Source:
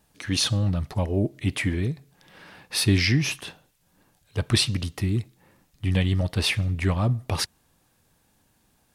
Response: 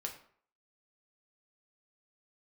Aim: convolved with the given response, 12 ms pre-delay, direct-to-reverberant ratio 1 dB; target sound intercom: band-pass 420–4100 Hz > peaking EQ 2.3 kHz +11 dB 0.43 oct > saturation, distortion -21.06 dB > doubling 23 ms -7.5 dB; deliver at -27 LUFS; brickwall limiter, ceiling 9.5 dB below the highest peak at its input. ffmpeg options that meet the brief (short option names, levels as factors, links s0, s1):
-filter_complex "[0:a]alimiter=limit=0.15:level=0:latency=1,asplit=2[s0][s1];[1:a]atrim=start_sample=2205,adelay=12[s2];[s1][s2]afir=irnorm=-1:irlink=0,volume=0.944[s3];[s0][s3]amix=inputs=2:normalize=0,highpass=420,lowpass=4100,equalizer=f=2300:t=o:w=0.43:g=11,asoftclip=threshold=0.299,asplit=2[s4][s5];[s5]adelay=23,volume=0.422[s6];[s4][s6]amix=inputs=2:normalize=0,volume=0.891"